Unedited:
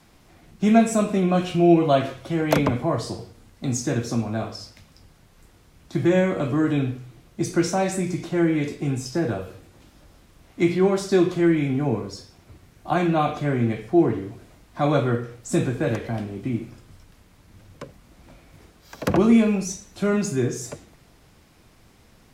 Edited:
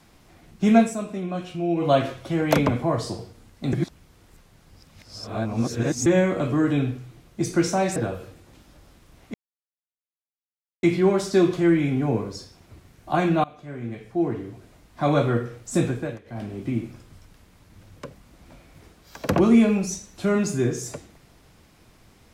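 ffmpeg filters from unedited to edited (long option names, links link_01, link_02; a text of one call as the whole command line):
ffmpeg -i in.wav -filter_complex "[0:a]asplit=10[link_01][link_02][link_03][link_04][link_05][link_06][link_07][link_08][link_09][link_10];[link_01]atrim=end=0.95,asetpts=PTS-STARTPTS,afade=type=out:start_time=0.8:duration=0.15:silence=0.354813[link_11];[link_02]atrim=start=0.95:end=1.75,asetpts=PTS-STARTPTS,volume=-9dB[link_12];[link_03]atrim=start=1.75:end=3.732,asetpts=PTS-STARTPTS,afade=type=in:duration=0.15:silence=0.354813[link_13];[link_04]atrim=start=3.728:end=6.062,asetpts=PTS-STARTPTS,areverse[link_14];[link_05]atrim=start=6.058:end=7.962[link_15];[link_06]atrim=start=9.228:end=10.61,asetpts=PTS-STARTPTS,afade=type=out:start_time=1.378:duration=0.004:curve=hsin,apad=pad_dur=1.49[link_16];[link_07]atrim=start=10.61:end=13.22,asetpts=PTS-STARTPTS,afade=type=in:duration=0.004:curve=hsin,afade=type=out:start_time=2.606:duration=0.004:curve=hsin:silence=0.0668344[link_17];[link_08]atrim=start=13.22:end=15.97,asetpts=PTS-STARTPTS,afade=type=in:duration=1.66:silence=0.0668344,afade=type=out:start_time=2.31:duration=0.44:curve=qsin:silence=0.1[link_18];[link_09]atrim=start=15.97:end=16.02,asetpts=PTS-STARTPTS,volume=-20dB[link_19];[link_10]atrim=start=16.02,asetpts=PTS-STARTPTS,afade=type=in:duration=0.44:curve=qsin:silence=0.1[link_20];[link_11][link_12][link_13]concat=n=3:v=0:a=1[link_21];[link_21][link_14]acrossfade=duration=0.004:curve1=hsin:curve2=hsin[link_22];[link_22][link_15]acrossfade=duration=0.004:curve1=hsin:curve2=hsin[link_23];[link_16][link_17][link_18][link_19][link_20]concat=n=5:v=0:a=1[link_24];[link_23][link_24]acrossfade=duration=0.004:curve1=hsin:curve2=hsin" out.wav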